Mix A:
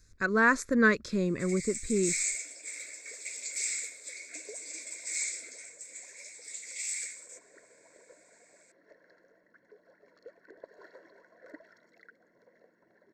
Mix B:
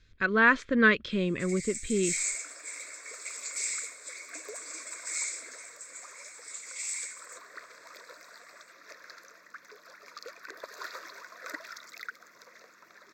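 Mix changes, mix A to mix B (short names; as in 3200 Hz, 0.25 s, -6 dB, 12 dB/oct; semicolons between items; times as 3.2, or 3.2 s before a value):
speech: add synth low-pass 3100 Hz, resonance Q 13; second sound: remove running mean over 36 samples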